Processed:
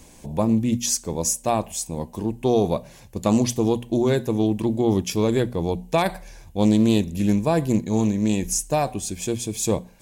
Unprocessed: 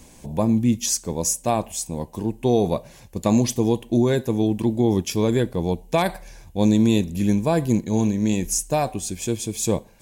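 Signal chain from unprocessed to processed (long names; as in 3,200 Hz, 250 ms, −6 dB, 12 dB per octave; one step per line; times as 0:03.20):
mains-hum notches 60/120/180/240 Hz
highs frequency-modulated by the lows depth 0.12 ms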